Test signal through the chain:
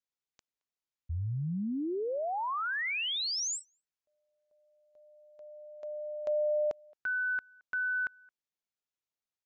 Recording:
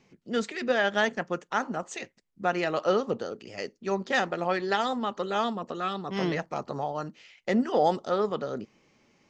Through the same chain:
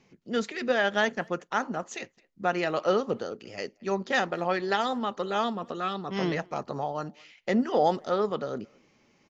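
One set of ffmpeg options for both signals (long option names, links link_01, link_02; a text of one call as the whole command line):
ffmpeg -i in.wav -filter_complex "[0:a]aresample=16000,aresample=44100,asplit=2[link_01][link_02];[link_02]adelay=220,highpass=300,lowpass=3400,asoftclip=type=hard:threshold=-21.5dB,volume=-27dB[link_03];[link_01][link_03]amix=inputs=2:normalize=0" out.wav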